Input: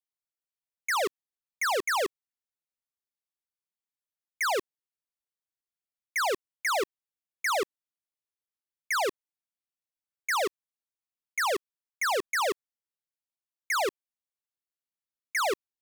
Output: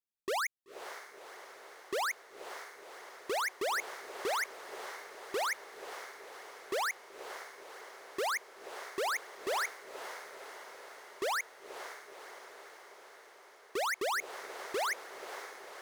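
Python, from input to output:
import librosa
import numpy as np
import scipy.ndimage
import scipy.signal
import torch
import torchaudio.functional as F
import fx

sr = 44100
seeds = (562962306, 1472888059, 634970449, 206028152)

p1 = np.flip(x).copy()
p2 = p1 + fx.echo_diffused(p1, sr, ms=516, feedback_pct=68, wet_db=-11.0, dry=0)
y = F.gain(torch.from_numpy(p2), -6.0).numpy()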